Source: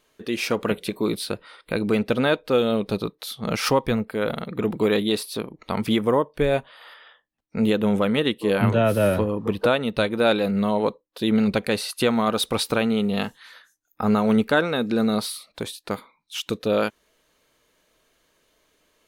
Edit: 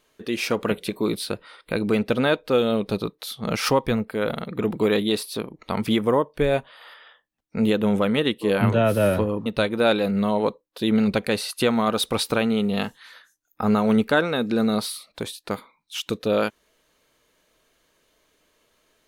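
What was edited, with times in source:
9.46–9.86 s: delete

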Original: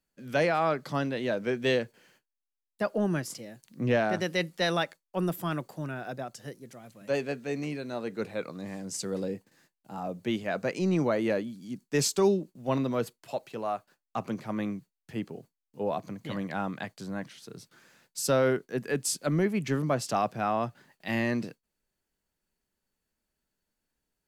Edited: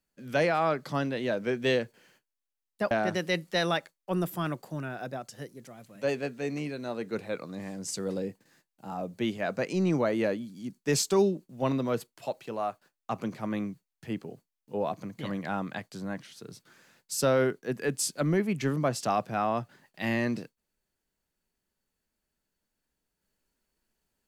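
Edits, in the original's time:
2.91–3.97 s: delete

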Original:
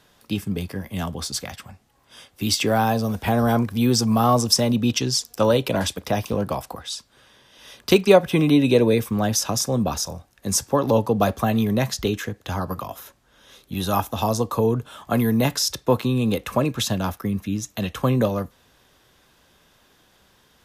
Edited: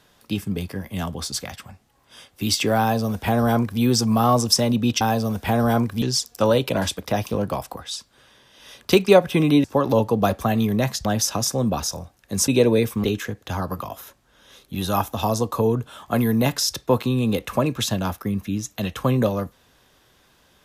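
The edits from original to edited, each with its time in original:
2.80–3.81 s: copy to 5.01 s
8.63–9.19 s: swap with 10.62–12.03 s

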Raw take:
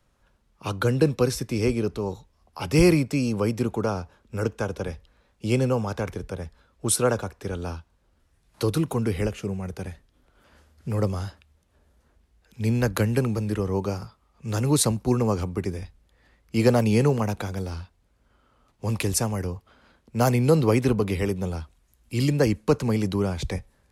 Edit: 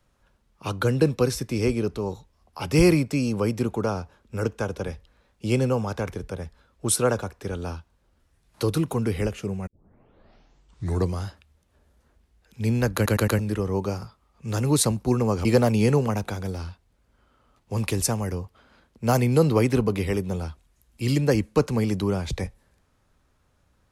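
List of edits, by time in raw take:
9.67 s: tape start 1.54 s
12.95 s: stutter in place 0.11 s, 4 plays
15.45–16.57 s: delete

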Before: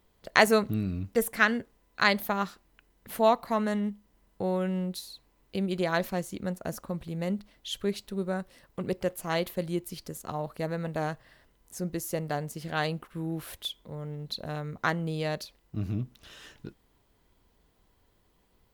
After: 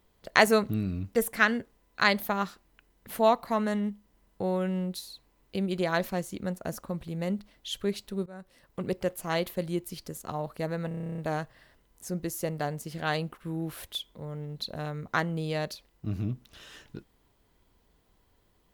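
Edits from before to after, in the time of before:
8.26–8.79 s: fade in, from -22 dB
10.88 s: stutter 0.03 s, 11 plays

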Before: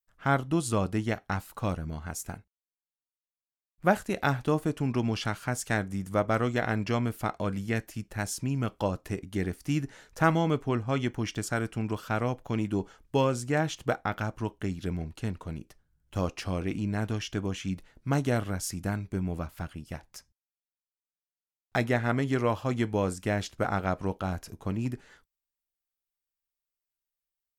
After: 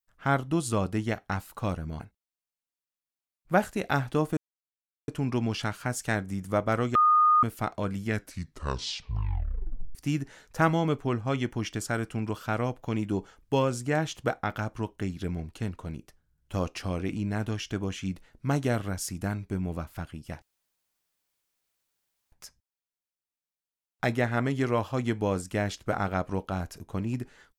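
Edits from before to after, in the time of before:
2.00–2.33 s: delete
4.70 s: insert silence 0.71 s
6.57–7.05 s: bleep 1.23 kHz -17 dBFS
7.67 s: tape stop 1.90 s
20.04 s: insert room tone 1.90 s

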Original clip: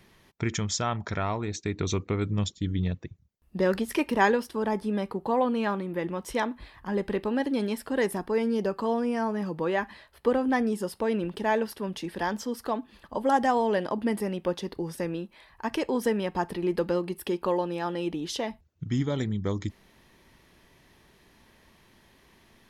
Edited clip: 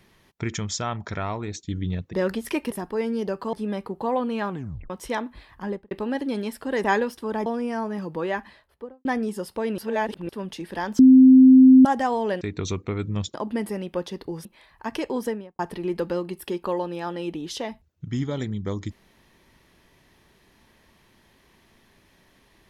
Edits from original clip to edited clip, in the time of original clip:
1.63–2.56 s: move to 13.85 s
3.06–3.57 s: delete
4.16–4.78 s: swap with 8.09–8.90 s
5.75 s: tape stop 0.40 s
6.89–7.16 s: studio fade out
9.83–10.49 s: studio fade out
11.22–11.73 s: reverse
12.43–13.29 s: bleep 260 Hz -7.5 dBFS
14.96–15.24 s: delete
15.97–16.38 s: studio fade out

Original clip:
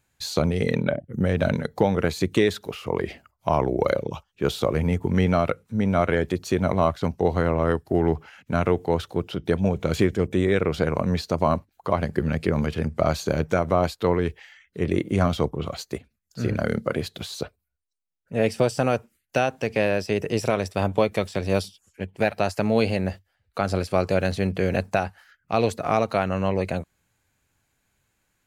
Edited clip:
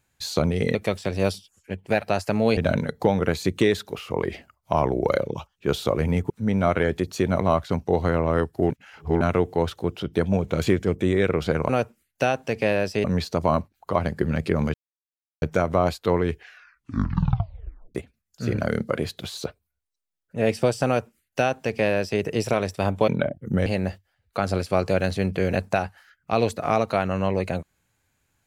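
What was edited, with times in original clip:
0.75–1.33 s: swap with 21.05–22.87 s
5.06–5.62 s: delete
8.02–8.53 s: reverse
12.71–13.39 s: mute
14.28 s: tape stop 1.64 s
18.83–20.18 s: copy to 11.01 s

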